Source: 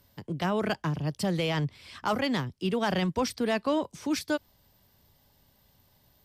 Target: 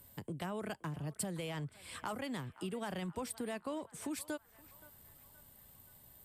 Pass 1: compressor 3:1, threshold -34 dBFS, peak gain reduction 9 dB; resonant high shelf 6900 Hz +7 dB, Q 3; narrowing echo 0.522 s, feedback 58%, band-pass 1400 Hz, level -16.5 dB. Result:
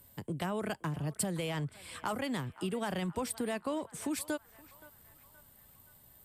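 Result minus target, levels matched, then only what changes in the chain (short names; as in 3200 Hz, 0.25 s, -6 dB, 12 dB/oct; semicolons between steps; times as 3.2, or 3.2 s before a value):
compressor: peak gain reduction -5.5 dB
change: compressor 3:1, threshold -42 dBFS, peak gain reduction 14 dB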